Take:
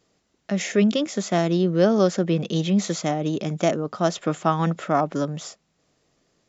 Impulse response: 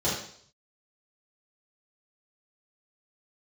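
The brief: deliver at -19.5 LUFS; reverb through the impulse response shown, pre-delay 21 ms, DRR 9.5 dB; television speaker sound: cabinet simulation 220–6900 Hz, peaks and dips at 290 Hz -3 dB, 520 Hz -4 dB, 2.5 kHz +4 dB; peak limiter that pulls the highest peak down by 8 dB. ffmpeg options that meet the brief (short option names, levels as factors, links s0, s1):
-filter_complex "[0:a]alimiter=limit=0.2:level=0:latency=1,asplit=2[s0][s1];[1:a]atrim=start_sample=2205,adelay=21[s2];[s1][s2]afir=irnorm=-1:irlink=0,volume=0.0891[s3];[s0][s3]amix=inputs=2:normalize=0,highpass=f=220:w=0.5412,highpass=f=220:w=1.3066,equalizer=f=290:t=q:w=4:g=-3,equalizer=f=520:t=q:w=4:g=-4,equalizer=f=2500:t=q:w=4:g=4,lowpass=f=6900:w=0.5412,lowpass=f=6900:w=1.3066,volume=2.37"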